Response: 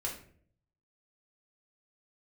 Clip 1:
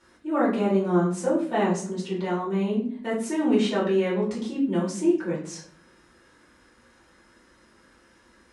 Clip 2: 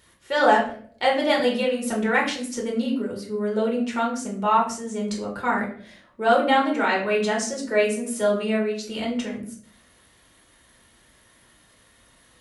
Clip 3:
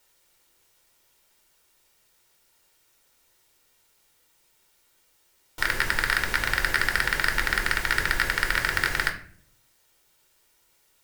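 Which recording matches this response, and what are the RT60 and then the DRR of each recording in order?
2; 0.55, 0.55, 0.55 s; -7.5, -2.5, 3.5 dB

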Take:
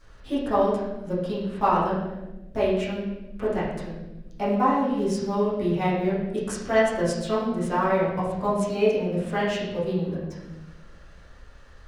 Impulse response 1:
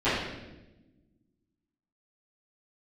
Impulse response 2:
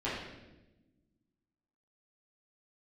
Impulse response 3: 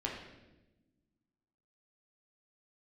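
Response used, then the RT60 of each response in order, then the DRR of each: 2; 1.0, 1.0, 1.0 s; -18.0, -10.5, -2.5 dB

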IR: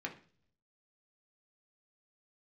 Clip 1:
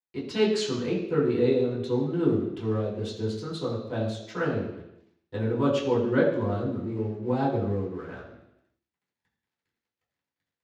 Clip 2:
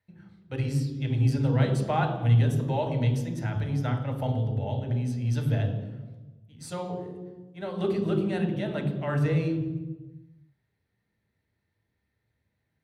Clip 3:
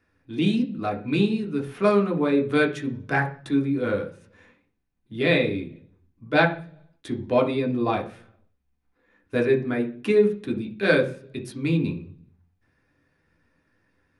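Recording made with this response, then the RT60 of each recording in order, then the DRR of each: 3; 0.85, 1.2, 0.45 s; -7.5, 3.5, 0.5 dB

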